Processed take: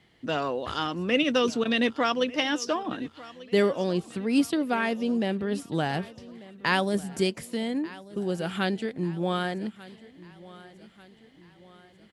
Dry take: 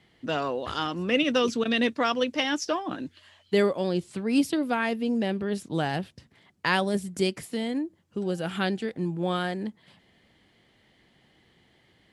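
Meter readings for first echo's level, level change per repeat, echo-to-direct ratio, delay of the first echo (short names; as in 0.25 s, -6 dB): -19.5 dB, -6.0 dB, -18.5 dB, 1.192 s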